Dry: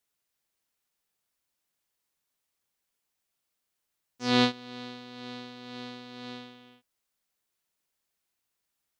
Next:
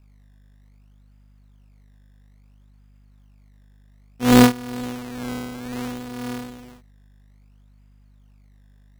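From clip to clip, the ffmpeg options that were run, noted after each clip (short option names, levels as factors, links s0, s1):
-af "aeval=exprs='val(0)+0.000447*(sin(2*PI*50*n/s)+sin(2*PI*2*50*n/s)/2+sin(2*PI*3*50*n/s)/3+sin(2*PI*4*50*n/s)/4+sin(2*PI*5*50*n/s)/5)':c=same,lowshelf=f=360:g=9,acrusher=samples=17:mix=1:aa=0.000001:lfo=1:lforange=17:lforate=0.6,volume=2.24"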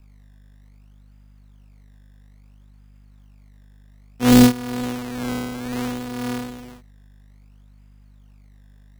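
-filter_complex "[0:a]acrossover=split=420|3200[s0][s1][s2];[s1]alimiter=limit=0.224:level=0:latency=1:release=171[s3];[s0][s3][s2]amix=inputs=3:normalize=0,asoftclip=type=tanh:threshold=0.501,volume=1.5"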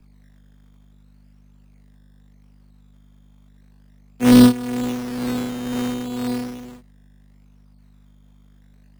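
-filter_complex "[0:a]equalizer=f=86:t=o:w=0.39:g=-12.5,acrossover=split=130|490|3500[s0][s1][s2][s3];[s1]acontrast=37[s4];[s0][s4][s2][s3]amix=inputs=4:normalize=0,acrusher=samples=9:mix=1:aa=0.000001:lfo=1:lforange=9:lforate=0.39,volume=0.841"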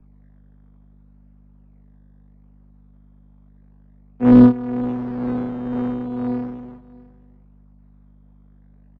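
-af "lowpass=1100,aecho=1:1:655:0.0708,volume=1.12"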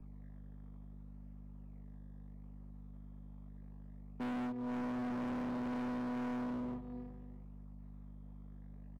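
-af "bandreject=f=1500:w=9,acompressor=threshold=0.0562:ratio=8,volume=63.1,asoftclip=hard,volume=0.0158,volume=0.891"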